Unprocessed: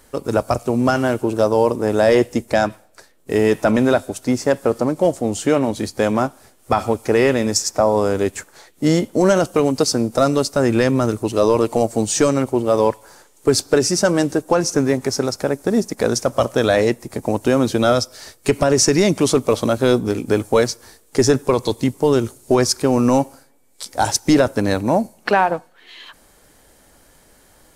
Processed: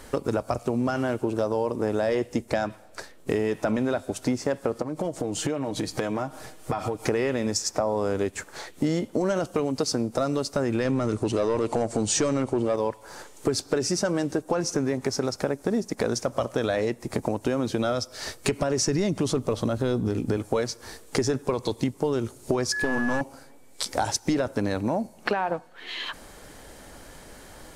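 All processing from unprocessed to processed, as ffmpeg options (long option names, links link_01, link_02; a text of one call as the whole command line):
ffmpeg -i in.wav -filter_complex "[0:a]asettb=1/sr,asplit=3[link_01][link_02][link_03];[link_01]atrim=end=4.824[link_04];[link_02]atrim=start=4.82:end=7.05,asetpts=PTS-STARTPTS,afade=type=in:duration=0.004:curve=qsin,afade=type=out:start_time=2.226:duration=0.004:curve=qsin,aecho=1:1:6.4:0.46,atrim=end_sample=98343,acompressor=threshold=-29dB:ratio=3:attack=3.2:release=140:knee=1:detection=peak[link_05];[link_03]atrim=start=7.046[link_06];[link_04][link_05]acrossfade=duration=0.004:curve1=hsin:curve2=qsin[link_07];[link_07][link_06]acrossfade=duration=0.004:curve1=qsin:curve2=hsin,asettb=1/sr,asplit=3[link_08][link_09][link_10];[link_08]atrim=end=10.854[link_11];[link_09]atrim=start=10.85:end=12.76,asetpts=PTS-STARTPTS,afade=type=in:duration=0.004:curve=qsin,afade=type=out:start_time=1.906:duration=0.004:curve=qsin,lowpass=frequency=10000:width=0.5412,lowpass=frequency=10000:width=1.3066,acontrast=72[link_12];[link_10]atrim=start=12.756[link_13];[link_11][link_12]acrossfade=duration=0.004:curve1=hsin:curve2=qsin[link_14];[link_14][link_13]acrossfade=duration=0.004:curve1=qsin:curve2=hsin,asettb=1/sr,asplit=3[link_15][link_16][link_17];[link_15]atrim=end=18.874[link_18];[link_16]atrim=start=18.87:end=20.37,asetpts=PTS-STARTPTS,afade=type=in:duration=0.004:curve=qsin,afade=type=out:start_time=1.496:duration=0.004:curve=qsin,lowshelf=frequency=170:gain=9.5,bandreject=frequency=2300:width=14,acrusher=bits=8:mix=0:aa=0.5[link_19];[link_17]atrim=start=20.366[link_20];[link_18][link_19]acrossfade=duration=0.004:curve1=hsin:curve2=qsin[link_21];[link_21][link_20]acrossfade=duration=0.004:curve1=qsin:curve2=hsin,asettb=1/sr,asplit=3[link_22][link_23][link_24];[link_22]atrim=end=22.724[link_25];[link_23]atrim=start=22.72:end=23.21,asetpts=PTS-STARTPTS,afade=type=in:duration=0.004:curve=qsin,afade=type=out:start_time=0.486:duration=0.004:curve=qsin,aeval=exprs='clip(val(0),-1,0.0708)':channel_layout=same,aeval=exprs='val(0)+0.0794*sin(2*PI*1700*n/s)':channel_layout=same[link_26];[link_24]atrim=start=23.206[link_27];[link_25][link_26]acrossfade=duration=0.004:curve1=hsin:curve2=qsin[link_28];[link_28][link_27]acrossfade=duration=0.004:curve1=qsin:curve2=hsin,highshelf=frequency=9200:gain=-10,alimiter=limit=-8dB:level=0:latency=1,acompressor=threshold=-32dB:ratio=4,volume=7dB" out.wav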